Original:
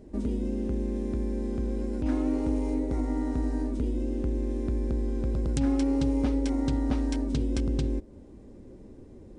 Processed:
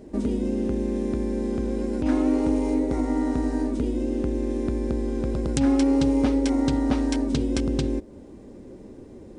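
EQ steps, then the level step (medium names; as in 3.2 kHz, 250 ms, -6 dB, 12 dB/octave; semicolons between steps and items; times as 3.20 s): bass shelf 120 Hz -10 dB; +7.5 dB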